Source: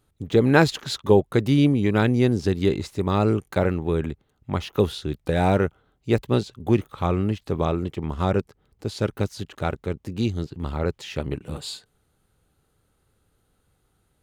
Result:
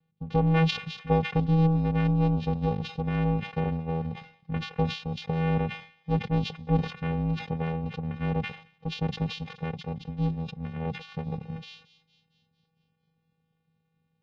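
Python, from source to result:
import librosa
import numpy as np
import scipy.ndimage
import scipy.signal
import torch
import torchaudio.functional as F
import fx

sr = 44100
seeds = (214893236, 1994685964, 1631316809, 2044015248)

y = fx.vocoder(x, sr, bands=4, carrier='square', carrier_hz=162.0)
y = scipy.signal.sosfilt(scipy.signal.butter(4, 3800.0, 'lowpass', fs=sr, output='sos'), y)
y = y + 0.59 * np.pad(y, (int(3.0 * sr / 1000.0), 0))[:len(y)]
y = fx.echo_wet_highpass(y, sr, ms=226, feedback_pct=54, hz=2700.0, wet_db=-13.5)
y = fx.sustainer(y, sr, db_per_s=120.0)
y = y * 10.0 ** (2.5 / 20.0)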